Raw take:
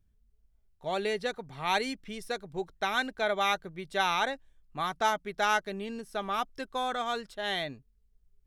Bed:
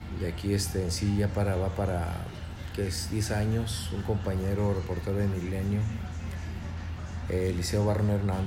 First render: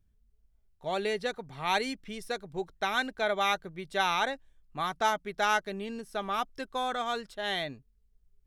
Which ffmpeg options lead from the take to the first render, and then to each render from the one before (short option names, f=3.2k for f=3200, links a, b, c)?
-af anull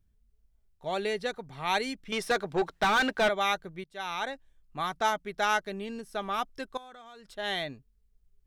-filter_complex "[0:a]asettb=1/sr,asplit=3[a][b][c];[a]atrim=end=2.124[d];[b]atrim=start=2.12:end=3.29,asetpts=PTS-STARTPTS,afade=t=in:d=0.004:c=qsin,afade=t=out:st=1.166:d=0.004:c=qsin,asplit=2[e][f];[f]highpass=f=720:p=1,volume=24dB,asoftclip=type=tanh:threshold=-16.5dB[g];[e][g]amix=inputs=2:normalize=0,lowpass=f=2.6k:p=1,volume=-6dB[h];[c]atrim=start=3.286[i];[d][h]acrossfade=d=0.004:c1=hsin:c2=qsin[j];[j][i]acrossfade=d=0.004:c1=qsin:c2=hsin,asettb=1/sr,asplit=3[k][l][m];[k]atrim=end=6.774[n];[l]atrim=start=6.77:end=7.32,asetpts=PTS-STARTPTS,afade=t=in:d=0.004:c=qsin,afade=t=out:st=0.546:d=0.004:c=qsin,acompressor=threshold=-47dB:ratio=6:attack=3.2:release=140:knee=1:detection=peak[o];[m]atrim=start=7.316[p];[n][o]acrossfade=d=0.004:c1=hsin:c2=qsin[q];[q][p]acrossfade=d=0.004:c1=qsin:c2=hsin,asplit=2[r][s];[r]atrim=end=3.84,asetpts=PTS-STARTPTS,afade=t=out:st=3.836:d=0.004:c=hsin:silence=0.0841395[t];[s]atrim=start=3.84,asetpts=PTS-STARTPTS,afade=t=in:d=0.99:c=qsin:silence=0.0841395[u];[t][u]concat=n=2:v=0:a=1"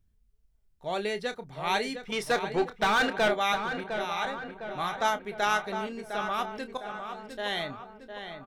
-filter_complex "[0:a]asplit=2[a][b];[b]adelay=29,volume=-11.5dB[c];[a][c]amix=inputs=2:normalize=0,asplit=2[d][e];[e]adelay=707,lowpass=f=2.6k:p=1,volume=-7.5dB,asplit=2[f][g];[g]adelay=707,lowpass=f=2.6k:p=1,volume=0.55,asplit=2[h][i];[i]adelay=707,lowpass=f=2.6k:p=1,volume=0.55,asplit=2[j][k];[k]adelay=707,lowpass=f=2.6k:p=1,volume=0.55,asplit=2[l][m];[m]adelay=707,lowpass=f=2.6k:p=1,volume=0.55,asplit=2[n][o];[o]adelay=707,lowpass=f=2.6k:p=1,volume=0.55,asplit=2[p][q];[q]adelay=707,lowpass=f=2.6k:p=1,volume=0.55[r];[f][h][j][l][n][p][r]amix=inputs=7:normalize=0[s];[d][s]amix=inputs=2:normalize=0"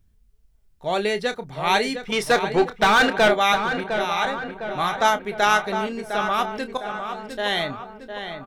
-af "volume=8dB"